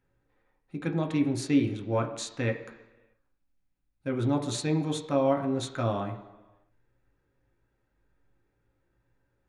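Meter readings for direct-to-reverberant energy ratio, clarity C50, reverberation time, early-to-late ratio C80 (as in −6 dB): 2.5 dB, 10.5 dB, 1.2 s, 13.0 dB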